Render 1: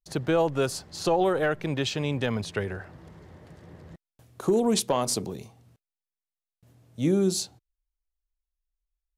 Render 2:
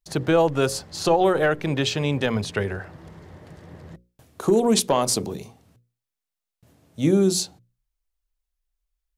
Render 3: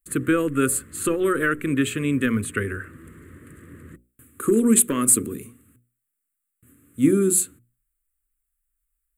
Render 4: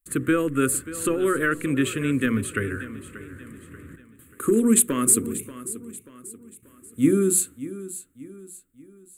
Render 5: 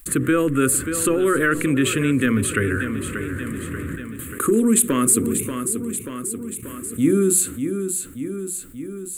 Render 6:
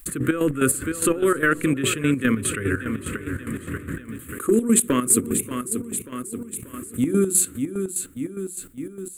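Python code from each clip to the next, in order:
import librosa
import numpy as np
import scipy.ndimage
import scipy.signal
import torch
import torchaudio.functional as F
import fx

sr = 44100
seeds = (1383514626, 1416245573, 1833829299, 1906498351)

y1 = fx.hum_notches(x, sr, base_hz=60, count=9)
y1 = y1 * 10.0 ** (5.0 / 20.0)
y2 = fx.curve_eq(y1, sr, hz=(120.0, 180.0, 250.0, 500.0, 800.0, 1200.0, 1700.0, 2600.0, 5500.0, 7900.0), db=(0, -5, 9, -5, -30, 4, 4, 0, -21, 12))
y2 = y2 * 10.0 ** (-1.0 / 20.0)
y3 = fx.echo_feedback(y2, sr, ms=585, feedback_pct=42, wet_db=-15)
y3 = y3 * 10.0 ** (-1.0 / 20.0)
y4 = fx.env_flatten(y3, sr, amount_pct=50)
y5 = fx.chopper(y4, sr, hz=4.9, depth_pct=65, duty_pct=50)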